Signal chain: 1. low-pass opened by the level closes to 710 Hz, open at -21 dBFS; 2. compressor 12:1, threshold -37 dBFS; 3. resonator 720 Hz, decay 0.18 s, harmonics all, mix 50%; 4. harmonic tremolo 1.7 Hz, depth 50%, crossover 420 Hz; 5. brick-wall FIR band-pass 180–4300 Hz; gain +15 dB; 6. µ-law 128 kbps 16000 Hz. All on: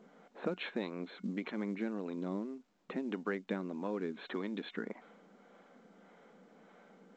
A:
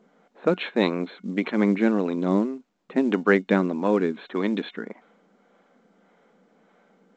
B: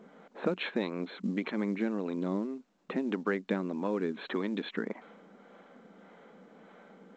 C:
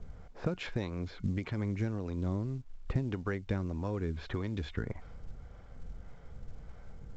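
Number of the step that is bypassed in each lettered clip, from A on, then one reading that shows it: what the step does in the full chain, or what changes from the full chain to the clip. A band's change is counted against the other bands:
2, mean gain reduction 8.0 dB; 3, loudness change +5.5 LU; 5, 125 Hz band +15.0 dB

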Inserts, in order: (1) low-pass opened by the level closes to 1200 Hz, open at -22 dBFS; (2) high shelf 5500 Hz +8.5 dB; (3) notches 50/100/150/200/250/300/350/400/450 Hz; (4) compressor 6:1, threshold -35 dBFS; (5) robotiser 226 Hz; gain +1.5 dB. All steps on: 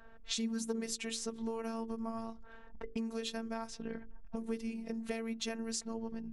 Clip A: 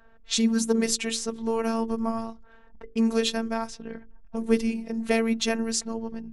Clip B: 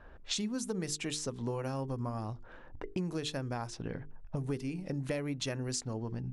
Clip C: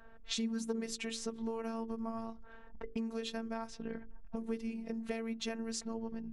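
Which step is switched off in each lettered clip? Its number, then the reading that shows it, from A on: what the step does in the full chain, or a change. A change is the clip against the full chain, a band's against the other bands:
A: 4, mean gain reduction 9.0 dB; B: 5, 125 Hz band +15.0 dB; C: 2, 8 kHz band -3.5 dB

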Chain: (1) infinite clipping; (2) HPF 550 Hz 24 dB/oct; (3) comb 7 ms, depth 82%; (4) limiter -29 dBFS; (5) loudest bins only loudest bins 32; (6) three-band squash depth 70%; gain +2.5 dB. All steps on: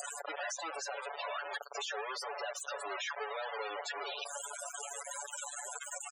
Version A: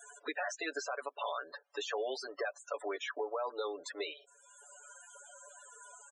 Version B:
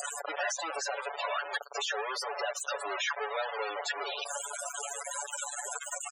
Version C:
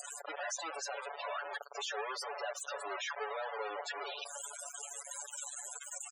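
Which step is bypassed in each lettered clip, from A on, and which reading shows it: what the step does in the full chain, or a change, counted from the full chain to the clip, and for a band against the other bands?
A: 1, crest factor change +2.5 dB; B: 4, mean gain reduction 4.5 dB; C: 6, momentary loudness spread change +1 LU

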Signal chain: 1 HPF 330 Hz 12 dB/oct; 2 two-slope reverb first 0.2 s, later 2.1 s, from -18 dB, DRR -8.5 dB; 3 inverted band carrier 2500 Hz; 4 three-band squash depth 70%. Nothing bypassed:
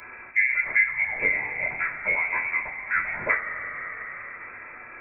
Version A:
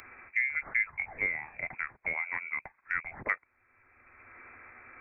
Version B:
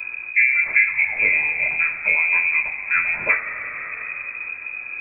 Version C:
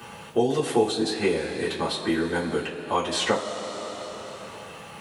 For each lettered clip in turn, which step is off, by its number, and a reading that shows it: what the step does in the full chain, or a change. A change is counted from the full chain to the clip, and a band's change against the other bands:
2, momentary loudness spread change +5 LU; 1, crest factor change -2.0 dB; 3, 2 kHz band -26.5 dB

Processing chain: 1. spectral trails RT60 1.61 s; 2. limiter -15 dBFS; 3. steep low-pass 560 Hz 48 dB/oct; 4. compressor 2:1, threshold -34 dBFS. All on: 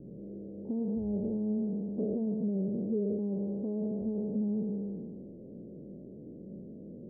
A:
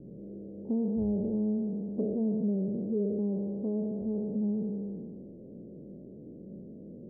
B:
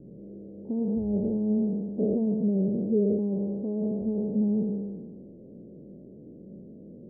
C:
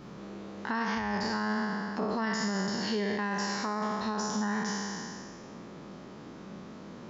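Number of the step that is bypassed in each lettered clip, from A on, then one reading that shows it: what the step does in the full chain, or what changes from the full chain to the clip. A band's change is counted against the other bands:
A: 2, mean gain reduction 1.5 dB; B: 4, mean gain reduction 3.0 dB; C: 3, crest factor change +2.0 dB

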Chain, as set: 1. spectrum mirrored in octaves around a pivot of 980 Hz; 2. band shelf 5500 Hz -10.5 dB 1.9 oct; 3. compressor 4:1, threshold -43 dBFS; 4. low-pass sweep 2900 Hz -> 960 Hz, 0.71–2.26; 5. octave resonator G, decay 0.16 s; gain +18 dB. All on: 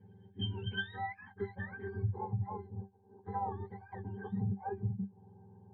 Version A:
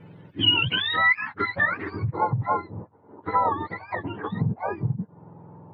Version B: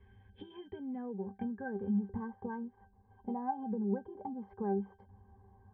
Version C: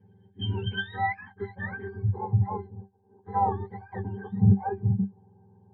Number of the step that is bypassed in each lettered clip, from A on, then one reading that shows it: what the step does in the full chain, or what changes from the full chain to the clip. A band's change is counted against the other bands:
5, 2 kHz band +10.0 dB; 1, 250 Hz band +11.5 dB; 3, mean gain reduction 7.5 dB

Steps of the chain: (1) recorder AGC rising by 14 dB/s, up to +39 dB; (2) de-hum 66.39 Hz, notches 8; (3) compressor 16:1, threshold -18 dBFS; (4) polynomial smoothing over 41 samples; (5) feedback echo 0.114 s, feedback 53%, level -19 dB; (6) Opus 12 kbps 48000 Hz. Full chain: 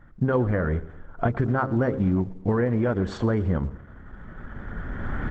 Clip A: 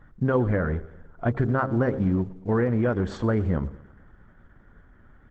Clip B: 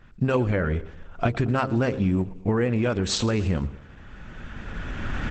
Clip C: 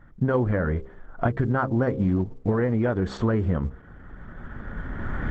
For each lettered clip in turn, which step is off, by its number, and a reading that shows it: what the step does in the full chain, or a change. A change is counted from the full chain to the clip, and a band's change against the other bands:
1, momentary loudness spread change -12 LU; 4, 4 kHz band +16.0 dB; 5, momentary loudness spread change -3 LU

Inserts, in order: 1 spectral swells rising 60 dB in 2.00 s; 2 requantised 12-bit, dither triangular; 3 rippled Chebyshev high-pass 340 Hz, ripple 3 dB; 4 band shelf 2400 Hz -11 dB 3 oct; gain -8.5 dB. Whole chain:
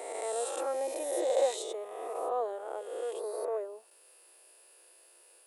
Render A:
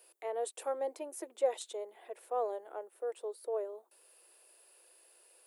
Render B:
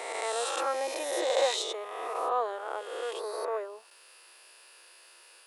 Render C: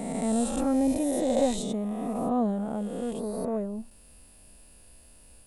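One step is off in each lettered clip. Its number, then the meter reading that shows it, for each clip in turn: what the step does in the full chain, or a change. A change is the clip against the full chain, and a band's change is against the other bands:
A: 1, loudness change -4.5 LU; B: 4, 2 kHz band +8.5 dB; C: 3, 250 Hz band +21.0 dB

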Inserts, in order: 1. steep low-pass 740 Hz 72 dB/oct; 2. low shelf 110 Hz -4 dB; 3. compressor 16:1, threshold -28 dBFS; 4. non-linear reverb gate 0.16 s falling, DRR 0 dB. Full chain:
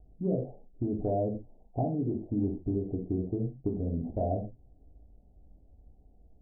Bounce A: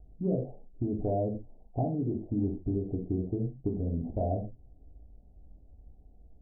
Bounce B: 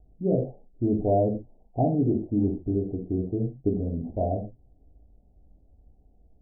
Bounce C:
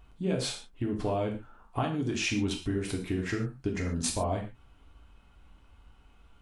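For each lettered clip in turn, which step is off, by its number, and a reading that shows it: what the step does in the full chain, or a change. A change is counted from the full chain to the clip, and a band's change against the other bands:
2, 125 Hz band +1.5 dB; 3, mean gain reduction 2.5 dB; 1, 1 kHz band +3.5 dB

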